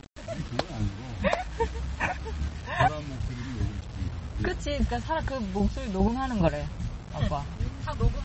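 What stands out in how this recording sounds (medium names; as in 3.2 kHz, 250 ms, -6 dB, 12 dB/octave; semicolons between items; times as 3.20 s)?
chopped level 2.5 Hz, depth 60%, duty 20%; a quantiser's noise floor 8-bit, dither none; MP3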